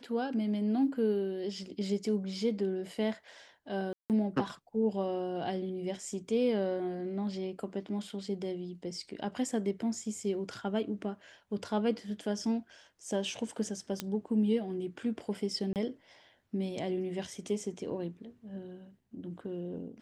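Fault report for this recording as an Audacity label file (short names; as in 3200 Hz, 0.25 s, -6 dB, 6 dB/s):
3.930000	4.100000	gap 0.168 s
14.000000	14.000000	pop -17 dBFS
15.730000	15.760000	gap 28 ms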